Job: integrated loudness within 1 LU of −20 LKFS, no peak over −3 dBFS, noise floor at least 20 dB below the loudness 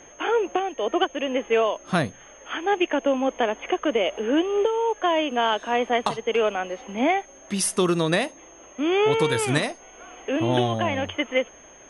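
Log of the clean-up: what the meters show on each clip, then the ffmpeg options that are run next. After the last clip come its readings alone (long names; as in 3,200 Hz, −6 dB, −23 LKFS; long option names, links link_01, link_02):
interfering tone 6,400 Hz; level of the tone −49 dBFS; integrated loudness −24.0 LKFS; sample peak −9.0 dBFS; target loudness −20.0 LKFS
→ -af "bandreject=frequency=6400:width=30"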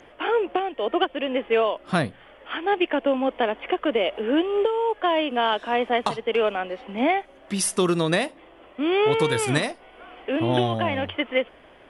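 interfering tone none found; integrated loudness −24.0 LKFS; sample peak −9.0 dBFS; target loudness −20.0 LKFS
→ -af "volume=4dB"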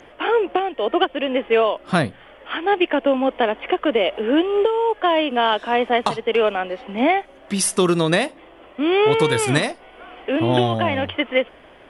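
integrated loudness −20.0 LKFS; sample peak −5.0 dBFS; background noise floor −47 dBFS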